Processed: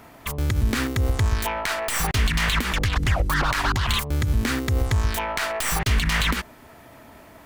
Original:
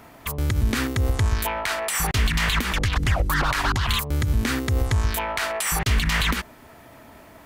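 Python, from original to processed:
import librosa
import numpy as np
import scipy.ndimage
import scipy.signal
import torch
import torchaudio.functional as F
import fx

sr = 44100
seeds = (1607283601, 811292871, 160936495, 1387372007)

y = fx.tracing_dist(x, sr, depth_ms=0.057)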